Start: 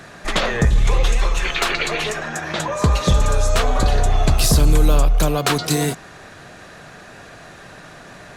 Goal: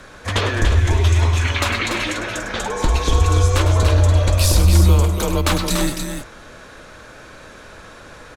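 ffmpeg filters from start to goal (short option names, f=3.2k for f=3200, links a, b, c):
-af "afreqshift=-120,aecho=1:1:102|288.6:0.316|0.501,volume=-1dB"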